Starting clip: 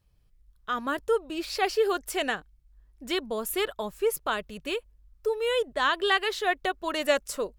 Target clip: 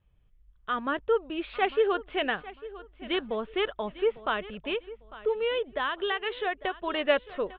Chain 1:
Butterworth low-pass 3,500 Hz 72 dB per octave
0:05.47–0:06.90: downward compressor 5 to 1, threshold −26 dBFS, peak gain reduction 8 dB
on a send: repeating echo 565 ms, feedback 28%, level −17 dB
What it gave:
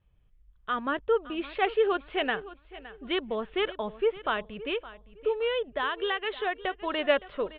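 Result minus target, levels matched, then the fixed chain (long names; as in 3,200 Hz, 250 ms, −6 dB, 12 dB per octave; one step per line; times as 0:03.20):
echo 285 ms early
Butterworth low-pass 3,500 Hz 72 dB per octave
0:05.47–0:06.90: downward compressor 5 to 1, threshold −26 dBFS, peak gain reduction 8 dB
on a send: repeating echo 850 ms, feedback 28%, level −17 dB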